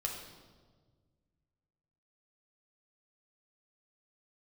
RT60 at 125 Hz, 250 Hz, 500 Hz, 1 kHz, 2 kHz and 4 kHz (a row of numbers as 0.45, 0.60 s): 2.5, 2.1, 1.7, 1.3, 1.0, 1.1 s